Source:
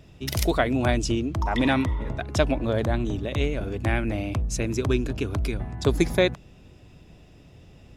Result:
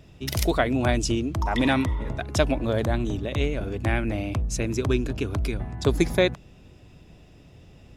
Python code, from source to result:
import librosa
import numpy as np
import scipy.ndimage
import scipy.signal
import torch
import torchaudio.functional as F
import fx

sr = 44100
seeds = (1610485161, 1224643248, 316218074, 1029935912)

y = fx.high_shelf(x, sr, hz=6700.0, db=5.5, at=(0.94, 3.18))